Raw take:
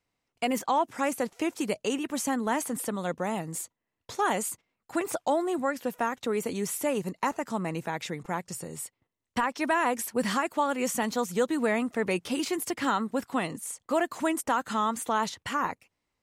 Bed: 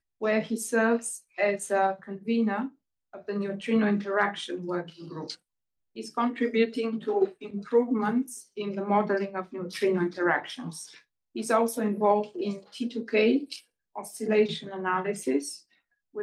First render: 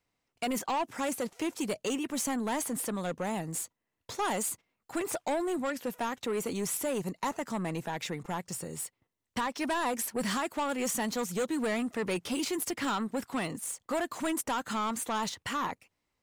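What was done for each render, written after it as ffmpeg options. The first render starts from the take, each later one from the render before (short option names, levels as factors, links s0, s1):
-filter_complex "[0:a]acrossover=split=3900[s0][s1];[s0]asoftclip=type=tanh:threshold=0.0473[s2];[s1]acrusher=bits=3:mode=log:mix=0:aa=0.000001[s3];[s2][s3]amix=inputs=2:normalize=0"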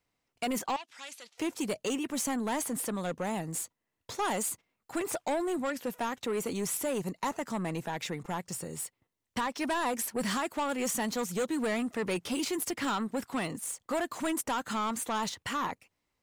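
-filter_complex "[0:a]asettb=1/sr,asplit=3[s0][s1][s2];[s0]atrim=end=0.764[s3];[s1]atrim=start=0.76:end=1.38,asetpts=PTS-STARTPTS,afade=t=in:d=0.004:c=qsin,afade=t=out:st=0.616:d=0.004:c=qsin,bandpass=f=3800:t=q:w=1.4[s4];[s2]atrim=start=1.376[s5];[s3][s4]acrossfade=d=0.004:c1=hsin:c2=qsin[s6];[s6][s5]acrossfade=d=0.004:c1=qsin:c2=hsin"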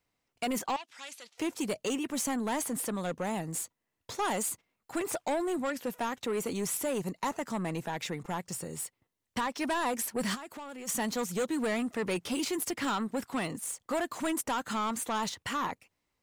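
-filter_complex "[0:a]asplit=3[s0][s1][s2];[s0]afade=t=out:st=10.34:d=0.02[s3];[s1]acompressor=threshold=0.01:ratio=16:attack=3.2:release=140:knee=1:detection=peak,afade=t=in:st=10.34:d=0.02,afade=t=out:st=10.87:d=0.02[s4];[s2]afade=t=in:st=10.87:d=0.02[s5];[s3][s4][s5]amix=inputs=3:normalize=0"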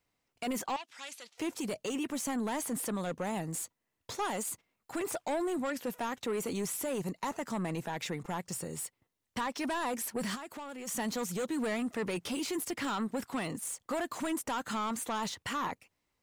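-af "alimiter=level_in=1.58:limit=0.0631:level=0:latency=1:release=10,volume=0.631"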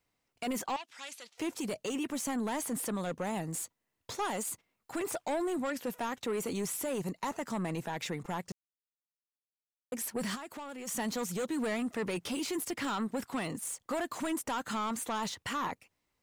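-filter_complex "[0:a]asplit=3[s0][s1][s2];[s0]atrim=end=8.52,asetpts=PTS-STARTPTS,afade=t=out:st=8.516:d=0.004:c=hsin[s3];[s1]atrim=start=8.52:end=9.92,asetpts=PTS-STARTPTS,volume=0[s4];[s2]atrim=start=9.92,asetpts=PTS-STARTPTS,afade=t=in:d=0.004:c=hsin[s5];[s3][s4][s5]concat=n=3:v=0:a=1"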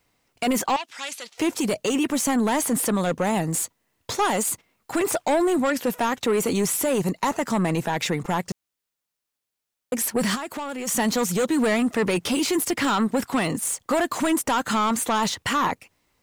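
-af "volume=3.98"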